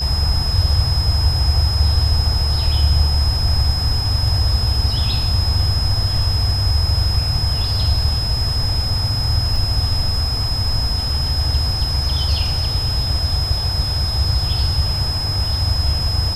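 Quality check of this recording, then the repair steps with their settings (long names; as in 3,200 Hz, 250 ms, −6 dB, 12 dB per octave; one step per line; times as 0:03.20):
whistle 5,100 Hz −22 dBFS
0:09.56: drop-out 2.2 ms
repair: notch filter 5,100 Hz, Q 30
repair the gap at 0:09.56, 2.2 ms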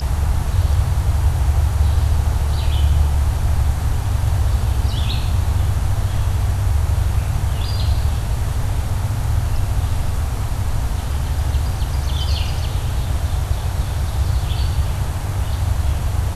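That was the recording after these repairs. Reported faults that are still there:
none of them is left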